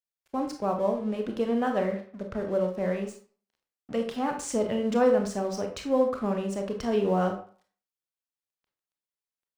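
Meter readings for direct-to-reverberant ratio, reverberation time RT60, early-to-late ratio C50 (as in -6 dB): 3.5 dB, 0.45 s, 8.0 dB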